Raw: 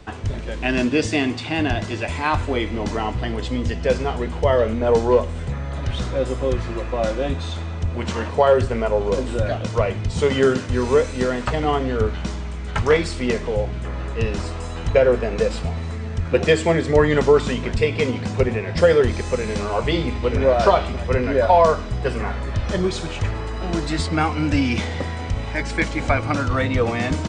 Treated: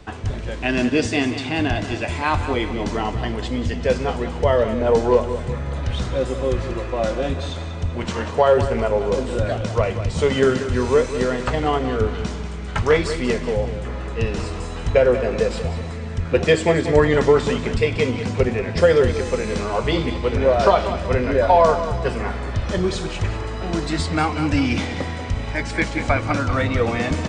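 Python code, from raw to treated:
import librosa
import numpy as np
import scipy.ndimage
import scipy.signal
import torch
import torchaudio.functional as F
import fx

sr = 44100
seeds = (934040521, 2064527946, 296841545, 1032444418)

y = fx.echo_feedback(x, sr, ms=189, feedback_pct=43, wet_db=-11)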